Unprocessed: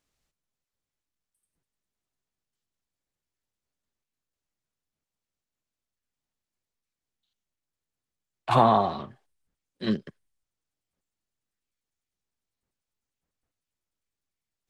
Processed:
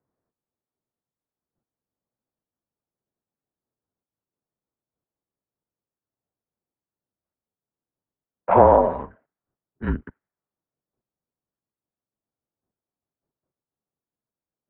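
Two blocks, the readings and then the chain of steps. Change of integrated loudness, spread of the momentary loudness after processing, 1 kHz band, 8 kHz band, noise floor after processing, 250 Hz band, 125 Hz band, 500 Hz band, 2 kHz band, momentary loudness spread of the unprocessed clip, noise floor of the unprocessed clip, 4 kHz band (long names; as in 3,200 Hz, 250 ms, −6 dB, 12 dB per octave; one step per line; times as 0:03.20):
+6.0 dB, 19 LU, +4.0 dB, can't be measured, below −85 dBFS, +1.5 dB, +2.0 dB, +9.0 dB, +2.5 dB, 18 LU, below −85 dBFS, below −15 dB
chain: low-pass that shuts in the quiet parts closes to 870 Hz, open at −30.5 dBFS
single-sideband voice off tune −150 Hz 250–2,100 Hz
level +6.5 dB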